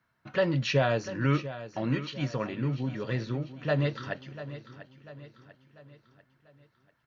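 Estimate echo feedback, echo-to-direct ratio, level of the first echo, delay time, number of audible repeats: 47%, -12.5 dB, -13.5 dB, 693 ms, 4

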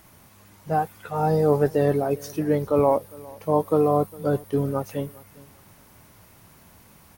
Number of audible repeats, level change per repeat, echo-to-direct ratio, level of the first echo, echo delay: 2, -11.5 dB, -22.0 dB, -22.5 dB, 406 ms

